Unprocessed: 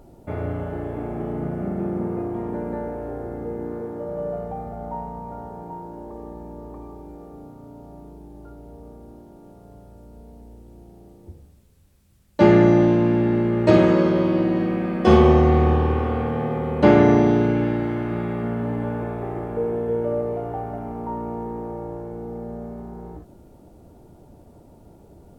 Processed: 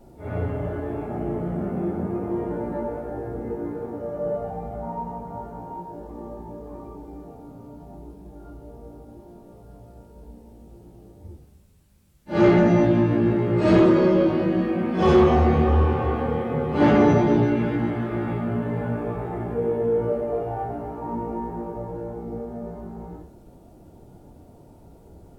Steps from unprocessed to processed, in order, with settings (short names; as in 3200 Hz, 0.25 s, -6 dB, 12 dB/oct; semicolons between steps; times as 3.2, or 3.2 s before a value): phase scrambler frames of 0.2 s; soft clip -8.5 dBFS, distortion -17 dB